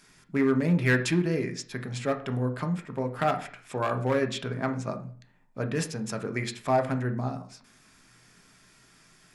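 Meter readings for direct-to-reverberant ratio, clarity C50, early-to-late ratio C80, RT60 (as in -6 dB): 6.5 dB, 13.0 dB, 18.0 dB, 0.45 s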